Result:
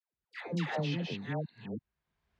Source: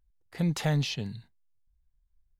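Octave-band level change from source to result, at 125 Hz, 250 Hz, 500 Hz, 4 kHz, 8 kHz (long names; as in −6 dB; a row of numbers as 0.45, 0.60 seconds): −6.5 dB, −4.0 dB, 0.0 dB, −6.5 dB, below −15 dB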